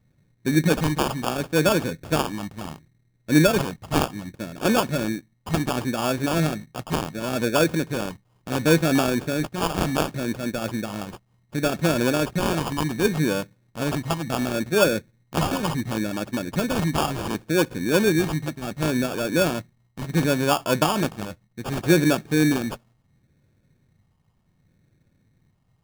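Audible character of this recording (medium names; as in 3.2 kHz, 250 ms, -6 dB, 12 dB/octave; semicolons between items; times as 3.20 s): phasing stages 2, 0.69 Hz, lowest notch 480–3900 Hz; aliases and images of a low sample rate 2 kHz, jitter 0%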